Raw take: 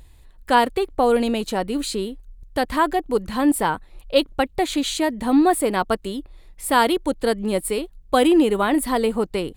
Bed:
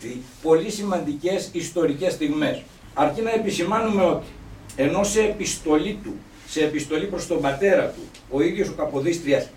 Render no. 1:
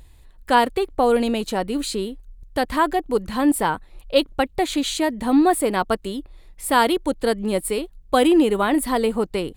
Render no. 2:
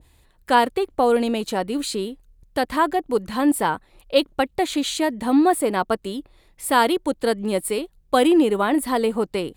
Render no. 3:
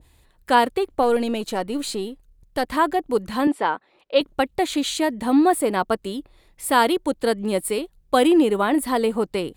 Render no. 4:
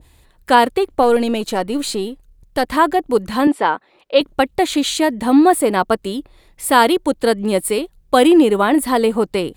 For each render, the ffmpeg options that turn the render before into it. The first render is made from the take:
-af anull
-af "highpass=f=110:p=1,adynamicequalizer=threshold=0.0355:dfrequency=1600:dqfactor=0.7:tfrequency=1600:tqfactor=0.7:attack=5:release=100:ratio=0.375:range=2:mode=cutabove:tftype=highshelf"
-filter_complex "[0:a]asettb=1/sr,asplit=3[s0][s1][s2];[s0]atrim=end=1.024[s3];[s1]atrim=start=1.02:end=2.66,asetpts=PTS-STARTPTS,afade=t=in:d=0.004:c=qsin,afade=t=out:st=1.636:d=0.004:c=qsin,aeval=exprs='if(lt(val(0),0),0.708*val(0),val(0))':c=same[s4];[s2]atrim=start=2.656[s5];[s3][s4]acrossfade=d=0.004:c1=hsin:c2=qsin[s6];[s6][s5]acrossfade=d=0.004:c1=qsin:c2=hsin,asettb=1/sr,asplit=3[s7][s8][s9];[s7]atrim=end=3.474[s10];[s8]atrim=start=3.47:end=4.21,asetpts=PTS-STARTPTS,afade=t=in:d=0.004:c=qsin,afade=t=out:st=0.736:d=0.004:c=qsin,highpass=310,lowpass=3800[s11];[s9]atrim=start=4.206[s12];[s10][s11]acrossfade=d=0.004:c1=hsin:c2=qsin[s13];[s13][s12]acrossfade=d=0.004:c1=qsin:c2=hsin"
-af "volume=1.88,alimiter=limit=0.891:level=0:latency=1"

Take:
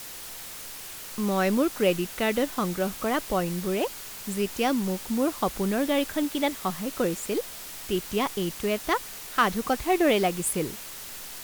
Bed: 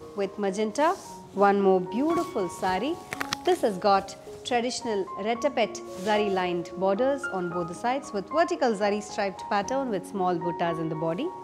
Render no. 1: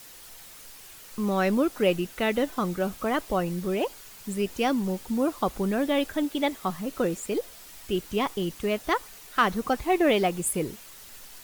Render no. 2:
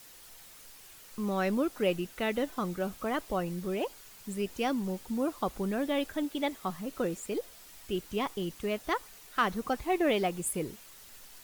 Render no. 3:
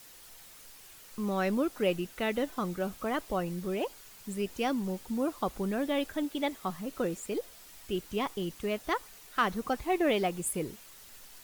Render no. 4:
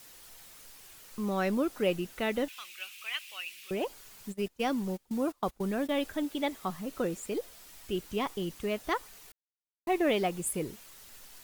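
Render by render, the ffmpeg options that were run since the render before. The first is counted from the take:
-af "afftdn=nr=8:nf=-40"
-af "volume=0.531"
-af anull
-filter_complex "[0:a]asettb=1/sr,asplit=3[s0][s1][s2];[s0]atrim=end=2.484[s3];[s1]atrim=start=2.48:end=3.71,asetpts=PTS-STARTPTS,afade=t=in:d=0.004:c=qsin,afade=t=out:st=1.226:d=0.004:c=qsin,highpass=f=2600:t=q:w=6.5[s4];[s2]atrim=start=3.706[s5];[s3][s4]acrossfade=d=0.004:c1=hsin:c2=qsin[s6];[s6][s5]acrossfade=d=0.004:c1=qsin:c2=hsin,asplit=3[s7][s8][s9];[s7]afade=t=out:st=4.31:d=0.02[s10];[s8]agate=range=0.0794:threshold=0.0158:ratio=16:release=100:detection=peak,afade=t=in:st=4.31:d=0.02,afade=t=out:st=6.01:d=0.02[s11];[s9]afade=t=in:st=6.01:d=0.02[s12];[s10][s11][s12]amix=inputs=3:normalize=0,asplit=3[s13][s14][s15];[s13]atrim=end=9.32,asetpts=PTS-STARTPTS,afade=t=out:st=9.316:d=0.004:c=hsin[s16];[s14]atrim=start=9.32:end=9.87,asetpts=PTS-STARTPTS,volume=0[s17];[s15]atrim=start=9.87,asetpts=PTS-STARTPTS,afade=t=in:d=0.004:c=hsin[s18];[s16][s17][s18]concat=n=3:v=0:a=1"

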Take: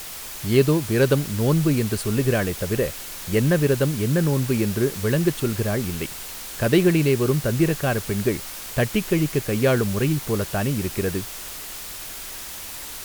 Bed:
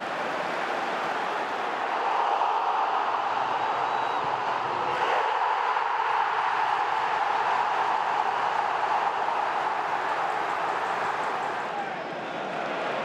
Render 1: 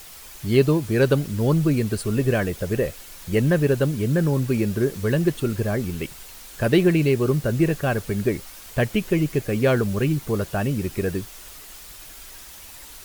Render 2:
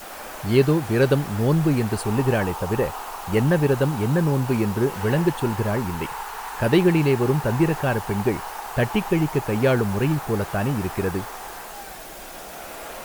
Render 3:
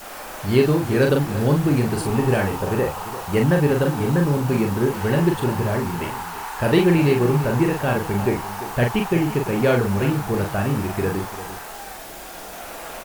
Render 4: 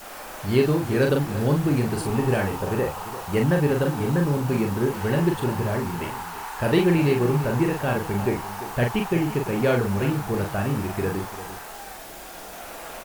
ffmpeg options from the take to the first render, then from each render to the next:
-af "afftdn=nr=8:nf=-35"
-filter_complex "[1:a]volume=0.398[s0];[0:a][s0]amix=inputs=2:normalize=0"
-filter_complex "[0:a]asplit=2[s0][s1];[s1]adelay=41,volume=0.631[s2];[s0][s2]amix=inputs=2:normalize=0,aecho=1:1:344:0.2"
-af "volume=0.708"

